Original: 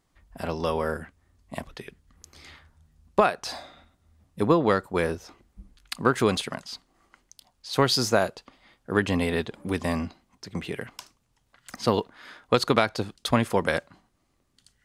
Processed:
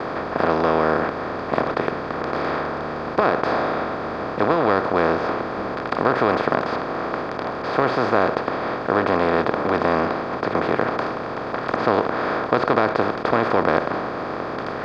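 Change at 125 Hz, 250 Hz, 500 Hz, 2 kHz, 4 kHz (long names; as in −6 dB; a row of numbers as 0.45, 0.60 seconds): +1.0, +4.5, +7.0, +7.5, −3.5 decibels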